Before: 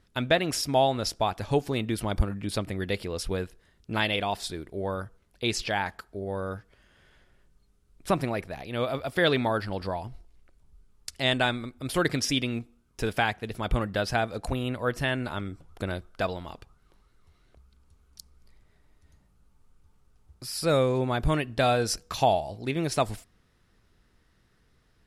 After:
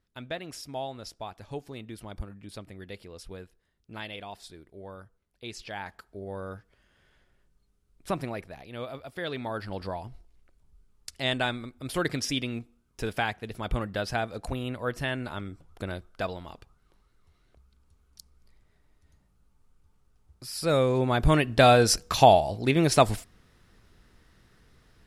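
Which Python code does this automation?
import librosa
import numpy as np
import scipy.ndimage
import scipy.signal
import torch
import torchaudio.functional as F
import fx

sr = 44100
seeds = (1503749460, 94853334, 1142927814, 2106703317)

y = fx.gain(x, sr, db=fx.line((5.55, -12.5), (6.07, -5.0), (8.32, -5.0), (9.26, -11.5), (9.74, -3.0), (20.45, -3.0), (21.55, 6.0)))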